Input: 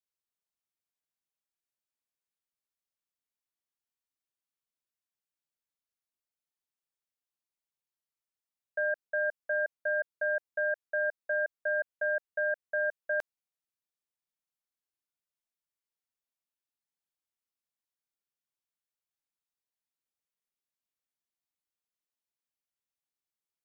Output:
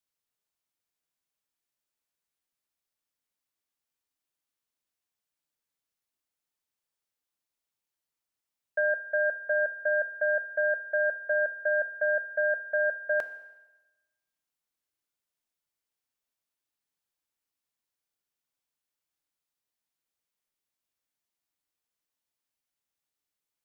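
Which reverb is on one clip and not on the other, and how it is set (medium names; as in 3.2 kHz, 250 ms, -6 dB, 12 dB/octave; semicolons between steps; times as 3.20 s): FDN reverb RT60 1.1 s, low-frequency decay 0.8×, high-frequency decay 1×, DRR 10.5 dB; trim +4 dB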